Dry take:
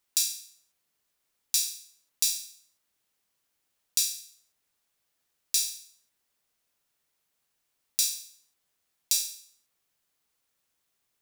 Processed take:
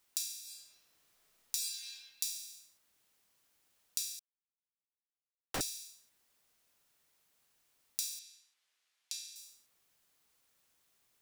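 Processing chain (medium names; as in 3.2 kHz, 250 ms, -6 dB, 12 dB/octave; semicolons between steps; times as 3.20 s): 0.40–1.62 s: reverb throw, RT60 1.7 s, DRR -2 dB; 4.19–5.61 s: Schmitt trigger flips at -20 dBFS; compression 6:1, threshold -38 dBFS, peak gain reduction 16.5 dB; 8.19–9.36 s: band-pass filter 2.8 kHz, Q 0.69; trim +3.5 dB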